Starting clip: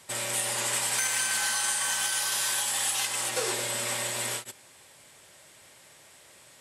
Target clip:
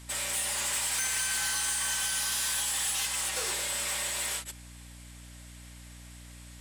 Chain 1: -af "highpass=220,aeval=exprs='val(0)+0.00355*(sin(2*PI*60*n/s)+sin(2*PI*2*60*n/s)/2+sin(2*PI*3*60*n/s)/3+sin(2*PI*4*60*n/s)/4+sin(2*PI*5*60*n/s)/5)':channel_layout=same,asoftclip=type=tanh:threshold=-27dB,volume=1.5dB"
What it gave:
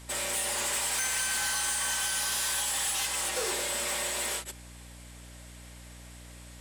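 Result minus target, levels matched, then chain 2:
250 Hz band +3.5 dB
-af "highpass=220,equalizer=frequency=330:width_type=o:width=2.6:gain=-9,aeval=exprs='val(0)+0.00355*(sin(2*PI*60*n/s)+sin(2*PI*2*60*n/s)/2+sin(2*PI*3*60*n/s)/3+sin(2*PI*4*60*n/s)/4+sin(2*PI*5*60*n/s)/5)':channel_layout=same,asoftclip=type=tanh:threshold=-27dB,volume=1.5dB"

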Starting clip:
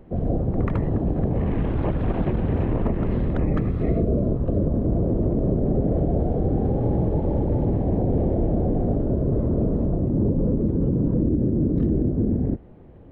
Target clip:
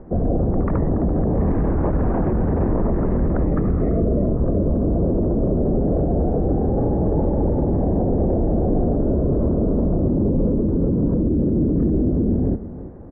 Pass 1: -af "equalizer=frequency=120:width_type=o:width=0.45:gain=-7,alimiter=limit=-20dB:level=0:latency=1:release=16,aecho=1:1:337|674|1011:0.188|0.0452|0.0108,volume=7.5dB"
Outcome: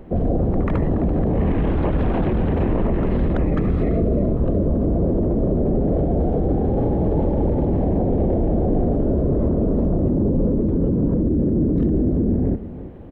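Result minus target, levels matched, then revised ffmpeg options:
2,000 Hz band +4.5 dB
-af "lowpass=frequency=1600:width=0.5412,lowpass=frequency=1600:width=1.3066,equalizer=frequency=120:width_type=o:width=0.45:gain=-7,alimiter=limit=-20dB:level=0:latency=1:release=16,aecho=1:1:337|674|1011:0.188|0.0452|0.0108,volume=7.5dB"

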